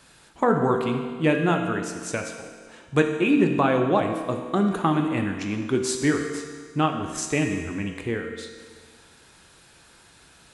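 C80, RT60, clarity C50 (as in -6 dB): 7.0 dB, 1.7 s, 5.5 dB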